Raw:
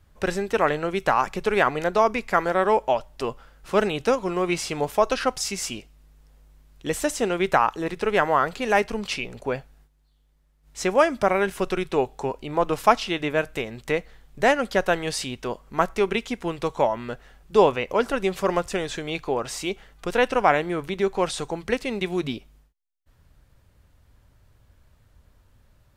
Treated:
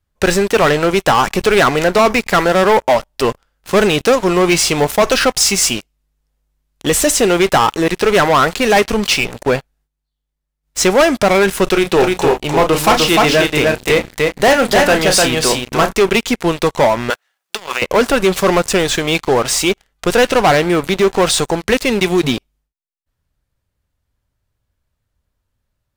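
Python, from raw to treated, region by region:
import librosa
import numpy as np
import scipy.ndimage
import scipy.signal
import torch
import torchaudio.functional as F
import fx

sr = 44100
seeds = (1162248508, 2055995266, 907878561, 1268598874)

y = fx.chain(x, sr, fx.hum_notches(base_hz=60, count=5),
    fx.doubler(ms=33.0, db=-10.5),
    fx.echo_single(ms=301, db=-4.0), at=(11.65, 15.93))
y = fx.chain(y, sr, fx.law_mismatch(coded='A'),
    fx.highpass(hz=860.0, slope=12),
    fx.over_compress(threshold_db=-36.0, ratio=-1.0), at=(17.1, 17.82))
y = fx.high_shelf(y, sr, hz=2900.0, db=5.0)
y = fx.leveller(y, sr, passes=5)
y = y * librosa.db_to_amplitude(-4.5)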